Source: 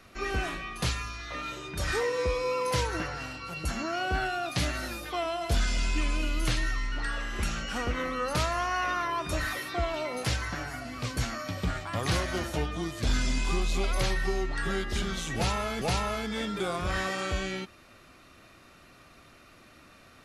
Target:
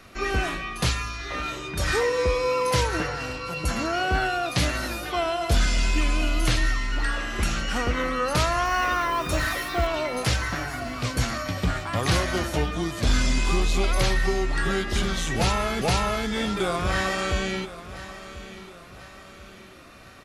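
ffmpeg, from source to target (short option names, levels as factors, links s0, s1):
-filter_complex "[0:a]asettb=1/sr,asplit=3[s0][s1][s2];[s0]atrim=end=8.654[s3];[s1]atrim=start=8.65:end=9.87,asetpts=PTS-STARTPTS,afade=t=in:d=0.004:c=qsin,afade=t=out:st=1.216:d=0.004:c=qsin,acrusher=bits=9:dc=4:mix=0:aa=0.000001[s4];[s2]atrim=start=9.866[s5];[s3][s4]acrossfade=d=0.004:c1=hsin:c2=qsin[s6];[s6][s5]acrossfade=d=0.004:c1=qsin:c2=hsin,aecho=1:1:1038|2076|3114|4152:0.178|0.0782|0.0344|0.0151,volume=1.88"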